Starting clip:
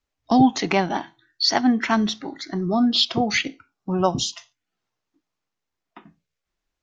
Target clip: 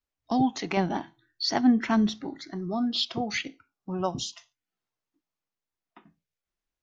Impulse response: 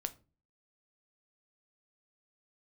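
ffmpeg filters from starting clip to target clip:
-filter_complex "[0:a]asettb=1/sr,asplit=3[a][b][c];[a]atrim=end=0.774[d];[b]atrim=start=0.77:end=2.49,asetpts=PTS-STARTPTS,afade=t=in:d=0.004:c=qsin,afade=t=out:st=1.716:d=0.004:c=qsin,lowshelf=f=450:g=9[e];[c]atrim=start=2.486[f];[d][e]acrossfade=d=0.004:c1=hsin:c2=qsin[g];[g][f]acrossfade=d=0.004:c1=qsin:c2=hsin,volume=-8.5dB"

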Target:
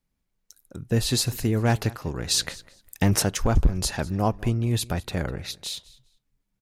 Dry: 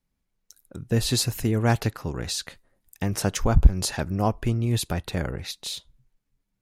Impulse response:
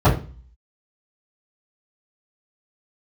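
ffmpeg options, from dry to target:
-filter_complex "[0:a]aecho=1:1:200|400:0.0891|0.0169,asplit=3[a][b][c];[a]afade=t=out:st=2.3:d=0.02[d];[b]acontrast=85,afade=t=in:st=2.3:d=0.02,afade=t=out:st=3.22:d=0.02[e];[c]afade=t=in:st=3.22:d=0.02[f];[d][e][f]amix=inputs=3:normalize=0,asoftclip=type=hard:threshold=-12dB"

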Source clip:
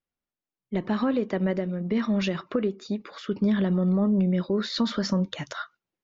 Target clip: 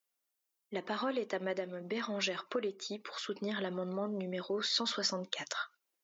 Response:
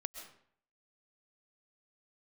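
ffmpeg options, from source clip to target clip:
-filter_complex "[0:a]highpass=420,highshelf=f=4.9k:g=12,asplit=2[a][b];[b]acompressor=threshold=-42dB:ratio=6,volume=2dB[c];[a][c]amix=inputs=2:normalize=0,volume=-7dB"

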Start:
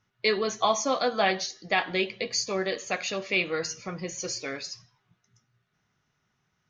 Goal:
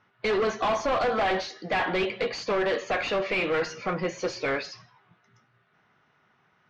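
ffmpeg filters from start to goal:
-filter_complex "[0:a]asplit=2[a][b];[b]highpass=f=720:p=1,volume=25dB,asoftclip=type=tanh:threshold=-10dB[c];[a][c]amix=inputs=2:normalize=0,lowpass=f=1.1k:p=1,volume=-6dB,asoftclip=type=hard:threshold=-20dB,lowpass=4.1k,volume=-2dB"

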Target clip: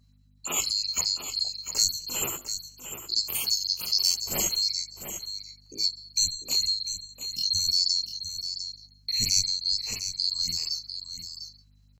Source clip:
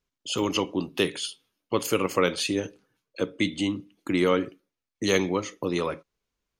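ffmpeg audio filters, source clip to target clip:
-filter_complex "[0:a]afftfilt=real='real(if(lt(b,736),b+184*(1-2*mod(floor(b/184),2)),b),0)':imag='imag(if(lt(b,736),b+184*(1-2*mod(floor(b/184),2)),b),0)':win_size=2048:overlap=0.75,adynamicequalizer=threshold=0.00355:dfrequency=3100:dqfactor=7.6:tfrequency=3100:tqfactor=7.6:attack=5:release=100:ratio=0.375:range=2.5:mode=boostabove:tftype=bell,acrossover=split=150|6400[a][b][c];[b]acompressor=threshold=-35dB:ratio=10[d];[a][d][c]amix=inputs=3:normalize=0,atempo=0.55,aeval=exprs='val(0)+0.000631*(sin(2*PI*50*n/s)+sin(2*PI*2*50*n/s)/2+sin(2*PI*3*50*n/s)/3+sin(2*PI*4*50*n/s)/4+sin(2*PI*5*50*n/s)/5)':c=same,asplit=2[e][f];[f]adelay=12,volume=-9.5dB[g];[e][g]amix=inputs=2:normalize=0,asplit=2[h][i];[i]aecho=0:1:698:0.335[j];[h][j]amix=inputs=2:normalize=0,afftfilt=real='re*(1-between(b*sr/1024,210*pow(7500/210,0.5+0.5*sin(2*PI*5.7*pts/sr))/1.41,210*pow(7500/210,0.5+0.5*sin(2*PI*5.7*pts/sr))*1.41))':imag='im*(1-between(b*sr/1024,210*pow(7500/210,0.5+0.5*sin(2*PI*5.7*pts/sr))/1.41,210*pow(7500/210,0.5+0.5*sin(2*PI*5.7*pts/sr))*1.41))':win_size=1024:overlap=0.75,volume=6dB"

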